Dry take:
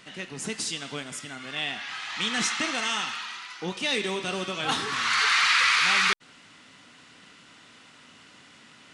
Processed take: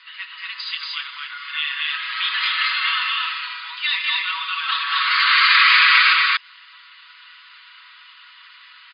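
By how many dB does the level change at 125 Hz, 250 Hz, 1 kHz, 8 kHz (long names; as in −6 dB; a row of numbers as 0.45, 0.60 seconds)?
below −40 dB, below −40 dB, +7.5 dB, below −30 dB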